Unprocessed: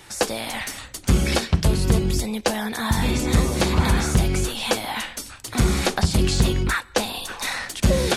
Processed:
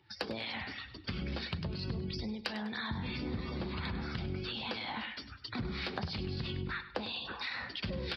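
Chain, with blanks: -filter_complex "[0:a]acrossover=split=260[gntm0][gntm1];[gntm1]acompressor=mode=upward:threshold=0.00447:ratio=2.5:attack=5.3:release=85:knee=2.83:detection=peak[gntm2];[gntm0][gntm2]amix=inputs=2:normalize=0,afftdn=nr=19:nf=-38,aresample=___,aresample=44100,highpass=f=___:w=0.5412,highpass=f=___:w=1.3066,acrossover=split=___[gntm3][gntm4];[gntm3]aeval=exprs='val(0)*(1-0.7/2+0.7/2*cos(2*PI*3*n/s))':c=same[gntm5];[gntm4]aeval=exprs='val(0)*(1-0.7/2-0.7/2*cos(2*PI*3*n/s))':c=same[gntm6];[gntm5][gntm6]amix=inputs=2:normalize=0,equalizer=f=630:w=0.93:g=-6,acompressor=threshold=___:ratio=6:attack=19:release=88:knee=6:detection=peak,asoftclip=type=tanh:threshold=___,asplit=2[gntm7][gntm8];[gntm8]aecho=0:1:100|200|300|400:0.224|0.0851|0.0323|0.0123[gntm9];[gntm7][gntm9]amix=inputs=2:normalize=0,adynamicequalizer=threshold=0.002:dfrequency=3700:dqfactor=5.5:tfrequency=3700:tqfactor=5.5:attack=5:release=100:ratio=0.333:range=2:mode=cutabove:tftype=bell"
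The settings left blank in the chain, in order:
11025, 67, 67, 1200, 0.0126, 0.126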